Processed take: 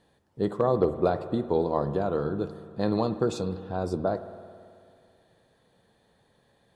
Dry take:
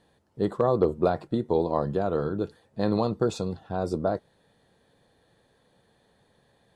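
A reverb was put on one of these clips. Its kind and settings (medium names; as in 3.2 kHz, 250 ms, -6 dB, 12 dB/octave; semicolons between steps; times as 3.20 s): spring tank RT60 2.3 s, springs 54 ms, chirp 55 ms, DRR 11.5 dB; trim -1 dB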